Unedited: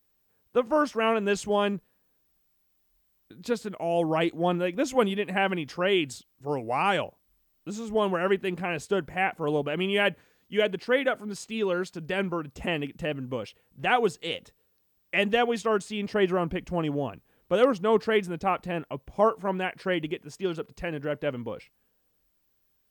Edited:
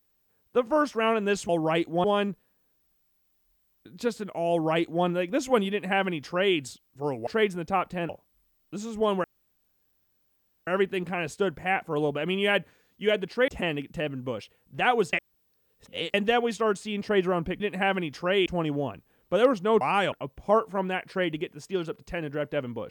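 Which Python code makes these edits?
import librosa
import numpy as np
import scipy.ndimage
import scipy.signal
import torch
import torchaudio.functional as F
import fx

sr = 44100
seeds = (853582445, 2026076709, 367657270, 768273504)

y = fx.edit(x, sr, fx.duplicate(start_s=3.95, length_s=0.55, to_s=1.49),
    fx.duplicate(start_s=5.15, length_s=0.86, to_s=16.65),
    fx.swap(start_s=6.72, length_s=0.31, other_s=18.0, other_length_s=0.82),
    fx.insert_room_tone(at_s=8.18, length_s=1.43),
    fx.cut(start_s=10.99, length_s=1.54),
    fx.reverse_span(start_s=14.18, length_s=1.01), tone=tone)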